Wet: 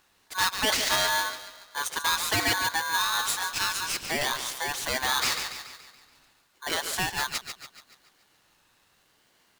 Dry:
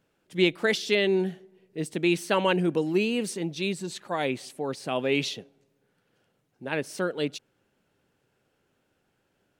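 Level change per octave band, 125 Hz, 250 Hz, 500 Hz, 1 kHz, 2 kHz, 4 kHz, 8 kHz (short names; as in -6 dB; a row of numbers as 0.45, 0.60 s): -8.5, -13.5, -10.5, +6.0, +4.0, +6.5, +12.0 dB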